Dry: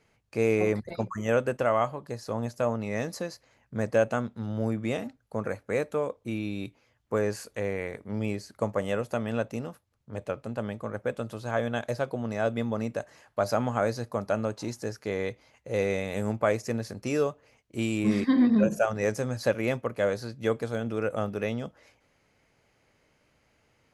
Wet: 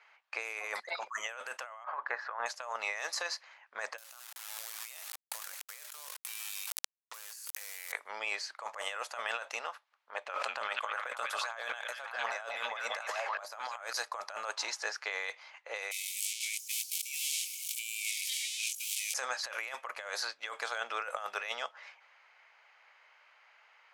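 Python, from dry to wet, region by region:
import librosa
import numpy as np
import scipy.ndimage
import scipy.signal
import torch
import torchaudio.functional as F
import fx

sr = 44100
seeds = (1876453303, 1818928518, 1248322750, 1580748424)

y = fx.chain(x, sr, fx.lowpass_res(hz=1600.0, q=2.9),
    fx.band_squash(depth_pct=40), at=(1.84, 2.46))
y = fx.chain(y, sr, fx.quant_companded(bits=4),
    fx.riaa(side='recording'),
    fx.sustainer(db_per_s=23.0), at=(3.98, 7.92))
y = fx.chain(y, sr, fx.echo_stepped(ms=191, hz=2900.0, octaves=-0.7, feedback_pct=70, wet_db=-2),
    fx.sustainer(db_per_s=38.0), at=(10.24, 13.93))
y = fx.chain(y, sr, fx.crossing_spikes(level_db=-22.0),
    fx.cheby_ripple_highpass(hz=2200.0, ripple_db=3), at=(15.91, 19.14))
y = scipy.signal.sosfilt(scipy.signal.butter(4, 870.0, 'highpass', fs=sr, output='sos'), y)
y = fx.env_lowpass(y, sr, base_hz=2800.0, full_db=-32.0)
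y = fx.over_compress(y, sr, threshold_db=-44.0, ratio=-1.0)
y = y * librosa.db_to_amplitude(3.5)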